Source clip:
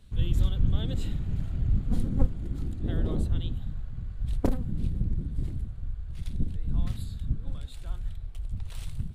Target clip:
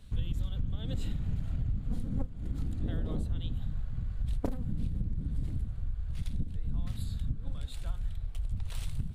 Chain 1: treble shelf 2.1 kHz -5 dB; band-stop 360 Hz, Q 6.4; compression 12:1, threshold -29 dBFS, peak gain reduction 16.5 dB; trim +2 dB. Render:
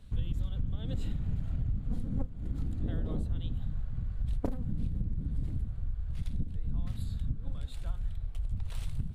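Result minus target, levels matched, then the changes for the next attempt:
4 kHz band -3.5 dB
remove: treble shelf 2.1 kHz -5 dB

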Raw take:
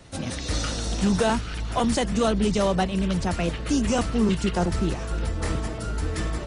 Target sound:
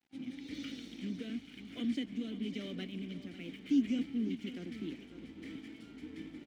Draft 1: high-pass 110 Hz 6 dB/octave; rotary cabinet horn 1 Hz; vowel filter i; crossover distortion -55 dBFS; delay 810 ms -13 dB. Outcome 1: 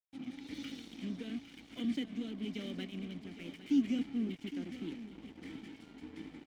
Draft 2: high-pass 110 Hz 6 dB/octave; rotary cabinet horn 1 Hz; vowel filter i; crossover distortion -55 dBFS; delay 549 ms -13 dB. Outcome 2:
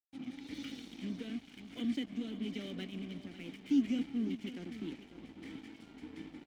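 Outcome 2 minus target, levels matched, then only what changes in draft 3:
crossover distortion: distortion +8 dB
change: crossover distortion -63 dBFS

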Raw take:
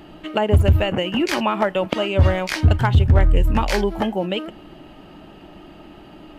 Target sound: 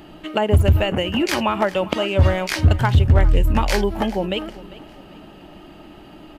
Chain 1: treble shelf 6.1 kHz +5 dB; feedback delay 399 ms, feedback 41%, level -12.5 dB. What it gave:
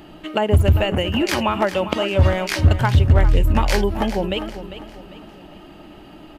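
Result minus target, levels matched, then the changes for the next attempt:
echo-to-direct +6.5 dB
change: feedback delay 399 ms, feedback 41%, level -19 dB

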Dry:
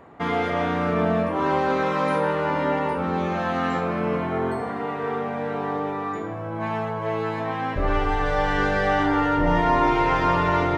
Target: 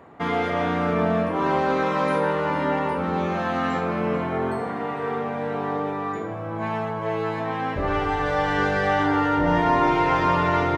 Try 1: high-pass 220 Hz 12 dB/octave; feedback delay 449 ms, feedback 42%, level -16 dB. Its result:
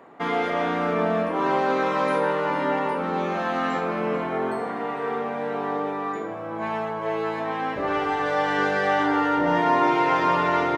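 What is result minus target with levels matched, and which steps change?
125 Hz band -7.0 dB
change: high-pass 58 Hz 12 dB/octave

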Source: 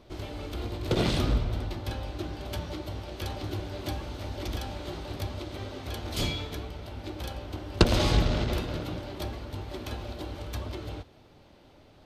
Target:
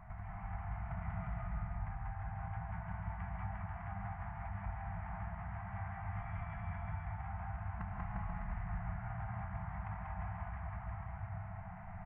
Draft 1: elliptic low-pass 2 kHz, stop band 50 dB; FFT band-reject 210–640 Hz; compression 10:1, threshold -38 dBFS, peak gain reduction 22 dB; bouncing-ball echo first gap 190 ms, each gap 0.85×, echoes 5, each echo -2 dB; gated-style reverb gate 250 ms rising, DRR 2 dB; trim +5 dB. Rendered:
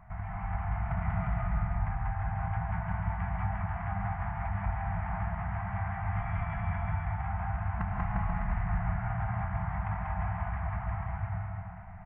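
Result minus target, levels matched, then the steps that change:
compression: peak gain reduction -10 dB
change: compression 10:1, threshold -49 dBFS, peak gain reduction 32 dB

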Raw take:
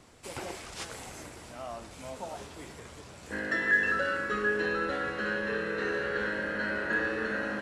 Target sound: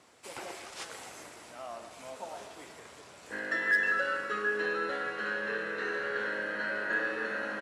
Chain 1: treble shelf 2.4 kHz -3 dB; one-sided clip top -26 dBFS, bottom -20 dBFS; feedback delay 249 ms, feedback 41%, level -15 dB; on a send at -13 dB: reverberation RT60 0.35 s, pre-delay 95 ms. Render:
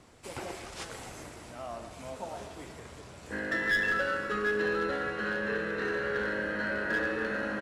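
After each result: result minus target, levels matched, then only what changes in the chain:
one-sided clip: distortion +11 dB; 500 Hz band +3.0 dB
change: one-sided clip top -19.5 dBFS, bottom -20 dBFS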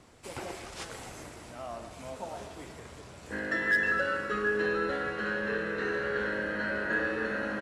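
500 Hz band +3.0 dB
add first: high-pass 550 Hz 6 dB/octave

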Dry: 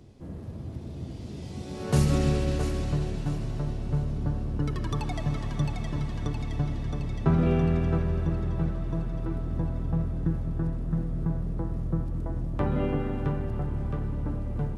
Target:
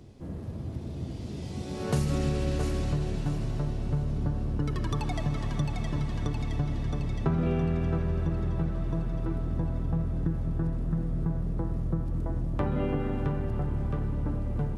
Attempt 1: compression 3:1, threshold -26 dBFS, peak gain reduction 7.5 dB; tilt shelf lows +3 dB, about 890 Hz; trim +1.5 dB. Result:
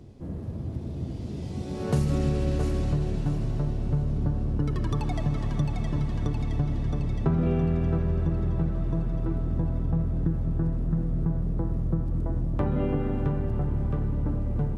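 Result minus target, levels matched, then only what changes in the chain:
1 kHz band -2.5 dB
remove: tilt shelf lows +3 dB, about 890 Hz

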